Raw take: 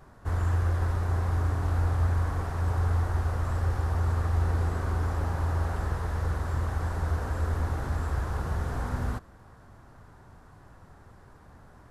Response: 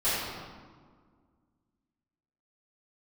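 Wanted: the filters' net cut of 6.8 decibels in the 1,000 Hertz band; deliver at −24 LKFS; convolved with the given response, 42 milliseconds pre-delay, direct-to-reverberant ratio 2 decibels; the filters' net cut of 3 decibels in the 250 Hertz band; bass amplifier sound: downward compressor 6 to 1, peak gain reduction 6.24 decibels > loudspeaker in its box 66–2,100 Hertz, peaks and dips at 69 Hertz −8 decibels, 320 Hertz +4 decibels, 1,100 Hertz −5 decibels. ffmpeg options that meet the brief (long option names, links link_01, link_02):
-filter_complex "[0:a]equalizer=frequency=250:width_type=o:gain=-6,equalizer=frequency=1000:width_type=o:gain=-6.5,asplit=2[link_01][link_02];[1:a]atrim=start_sample=2205,adelay=42[link_03];[link_02][link_03]afir=irnorm=-1:irlink=0,volume=-14.5dB[link_04];[link_01][link_04]amix=inputs=2:normalize=0,acompressor=threshold=-23dB:ratio=6,highpass=frequency=66:width=0.5412,highpass=frequency=66:width=1.3066,equalizer=frequency=69:width_type=q:width=4:gain=-8,equalizer=frequency=320:width_type=q:width=4:gain=4,equalizer=frequency=1100:width_type=q:width=4:gain=-5,lowpass=frequency=2100:width=0.5412,lowpass=frequency=2100:width=1.3066,volume=9dB"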